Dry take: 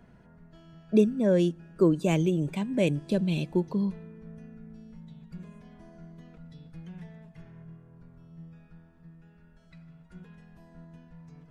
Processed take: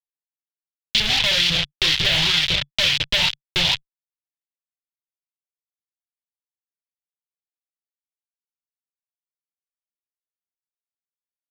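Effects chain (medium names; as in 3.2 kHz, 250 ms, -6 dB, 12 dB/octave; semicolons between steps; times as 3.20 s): one-bit delta coder 64 kbps, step -24 dBFS; bass shelf 110 Hz -9.5 dB; gate with hold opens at -18 dBFS; reverberation RT60 0.35 s, pre-delay 3 ms, DRR 2.5 dB; LFO band-pass saw up 2 Hz 410–2700 Hz; fuzz box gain 42 dB, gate -33 dBFS; FFT filter 140 Hz 0 dB, 200 Hz -22 dB, 1.1 kHz -16 dB, 3.4 kHz +13 dB, 8.9 kHz -12 dB; compression, threshold -19 dBFS, peak gain reduction 5.5 dB; trim +4.5 dB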